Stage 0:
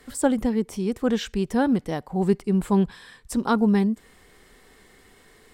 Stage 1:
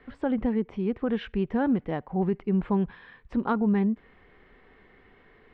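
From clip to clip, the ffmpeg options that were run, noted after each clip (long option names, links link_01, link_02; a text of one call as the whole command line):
ffmpeg -i in.wav -af "lowpass=frequency=2700:width=0.5412,lowpass=frequency=2700:width=1.3066,alimiter=limit=-15dB:level=0:latency=1:release=77,volume=-2dB" out.wav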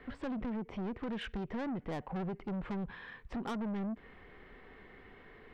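ffmpeg -i in.wav -af "acompressor=threshold=-27dB:ratio=16,asoftclip=type=tanh:threshold=-36dB,volume=1.5dB" out.wav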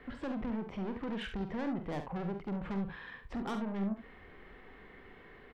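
ffmpeg -i in.wav -af "aecho=1:1:46|71:0.398|0.316" out.wav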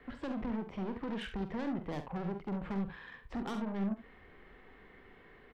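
ffmpeg -i in.wav -filter_complex "[0:a]acrossover=split=330|3000[link_01][link_02][link_03];[link_02]acompressor=threshold=-38dB:ratio=6[link_04];[link_01][link_04][link_03]amix=inputs=3:normalize=0,aeval=exprs='0.0473*(cos(1*acos(clip(val(0)/0.0473,-1,1)))-cos(1*PI/2))+0.00211*(cos(7*acos(clip(val(0)/0.0473,-1,1)))-cos(7*PI/2))':channel_layout=same" out.wav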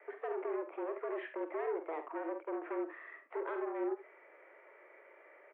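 ffmpeg -i in.wav -af "highpass=frequency=190:width_type=q:width=0.5412,highpass=frequency=190:width_type=q:width=1.307,lowpass=frequency=2200:width_type=q:width=0.5176,lowpass=frequency=2200:width_type=q:width=0.7071,lowpass=frequency=2200:width_type=q:width=1.932,afreqshift=160" out.wav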